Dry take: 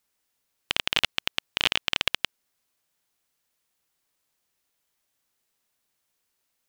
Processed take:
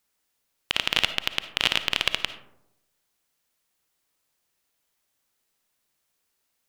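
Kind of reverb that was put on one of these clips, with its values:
comb and all-pass reverb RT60 0.85 s, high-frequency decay 0.35×, pre-delay 15 ms, DRR 10.5 dB
level +1 dB

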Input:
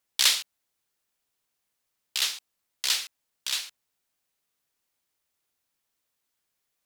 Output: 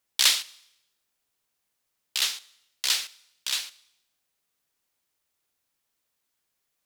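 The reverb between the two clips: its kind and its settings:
four-comb reverb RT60 0.83 s, combs from 28 ms, DRR 20 dB
level +1 dB

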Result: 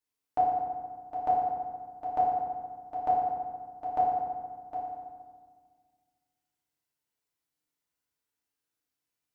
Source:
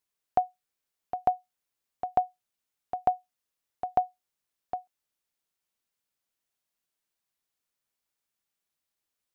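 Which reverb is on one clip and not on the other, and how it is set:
feedback delay network reverb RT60 1.7 s, low-frequency decay 1.35×, high-frequency decay 0.6×, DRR −7.5 dB
level −9 dB

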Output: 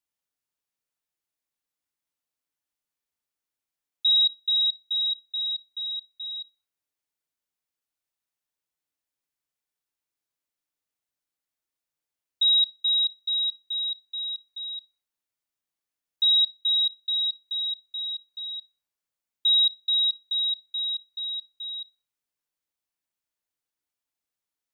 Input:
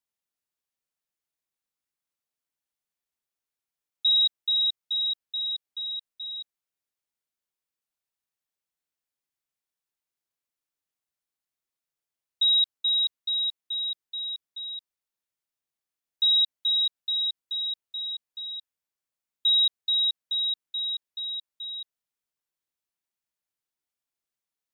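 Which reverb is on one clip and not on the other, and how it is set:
feedback delay network reverb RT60 0.44 s, high-frequency decay 0.7×, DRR 10 dB

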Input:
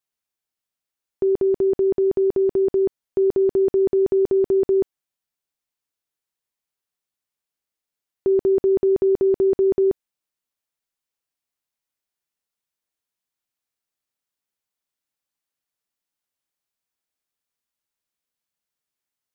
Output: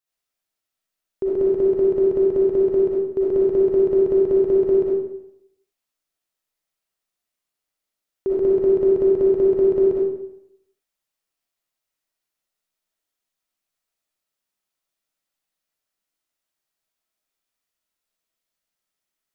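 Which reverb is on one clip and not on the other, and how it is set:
comb and all-pass reverb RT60 0.76 s, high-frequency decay 0.85×, pre-delay 20 ms, DRR −6.5 dB
level −3.5 dB

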